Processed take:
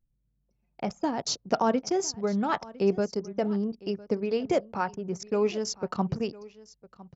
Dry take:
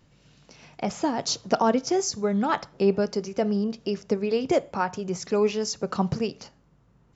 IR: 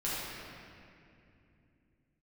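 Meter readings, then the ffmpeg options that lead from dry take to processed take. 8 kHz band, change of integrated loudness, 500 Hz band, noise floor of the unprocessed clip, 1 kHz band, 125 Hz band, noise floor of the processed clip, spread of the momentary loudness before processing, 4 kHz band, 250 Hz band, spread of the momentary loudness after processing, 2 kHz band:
can't be measured, −3.0 dB, −3.0 dB, −61 dBFS, −3.0 dB, −3.0 dB, −75 dBFS, 7 LU, −3.5 dB, −3.0 dB, 9 LU, −3.5 dB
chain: -af "anlmdn=3.98,aecho=1:1:1006:0.0944,volume=-3dB"

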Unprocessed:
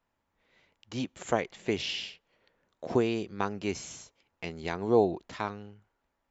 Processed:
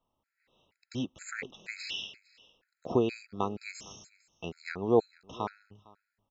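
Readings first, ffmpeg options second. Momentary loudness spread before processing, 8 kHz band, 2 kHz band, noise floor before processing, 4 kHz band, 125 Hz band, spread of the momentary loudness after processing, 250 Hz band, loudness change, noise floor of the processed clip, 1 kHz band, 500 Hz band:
17 LU, can't be measured, −2.5 dB, −80 dBFS, −3.0 dB, −2.5 dB, 18 LU, −2.5 dB, −2.0 dB, below −85 dBFS, −2.5 dB, −2.5 dB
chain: -af "bandreject=frequency=6200:width=21,aecho=1:1:456:0.0668,afftfilt=real='re*gt(sin(2*PI*2.1*pts/sr)*(1-2*mod(floor(b*sr/1024/1300),2)),0)':imag='im*gt(sin(2*PI*2.1*pts/sr)*(1-2*mod(floor(b*sr/1024/1300),2)),0)':win_size=1024:overlap=0.75"

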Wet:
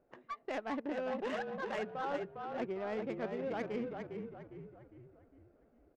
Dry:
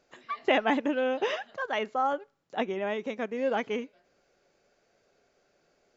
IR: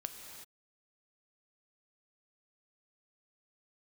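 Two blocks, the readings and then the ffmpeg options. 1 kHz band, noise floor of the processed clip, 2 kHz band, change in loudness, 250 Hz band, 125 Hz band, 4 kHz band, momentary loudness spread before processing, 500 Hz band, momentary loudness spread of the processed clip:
−10.0 dB, −69 dBFS, −11.0 dB, −9.5 dB, −7.5 dB, can't be measured, −14.5 dB, 10 LU, −8.0 dB, 14 LU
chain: -filter_complex "[0:a]areverse,acompressor=threshold=-35dB:ratio=8,areverse,asplit=7[link_01][link_02][link_03][link_04][link_05][link_06][link_07];[link_02]adelay=405,afreqshift=-37,volume=-4.5dB[link_08];[link_03]adelay=810,afreqshift=-74,volume=-10.9dB[link_09];[link_04]adelay=1215,afreqshift=-111,volume=-17.3dB[link_10];[link_05]adelay=1620,afreqshift=-148,volume=-23.6dB[link_11];[link_06]adelay=2025,afreqshift=-185,volume=-30dB[link_12];[link_07]adelay=2430,afreqshift=-222,volume=-36.4dB[link_13];[link_01][link_08][link_09][link_10][link_11][link_12][link_13]amix=inputs=7:normalize=0,adynamicsmooth=sensitivity=5.5:basefreq=920"

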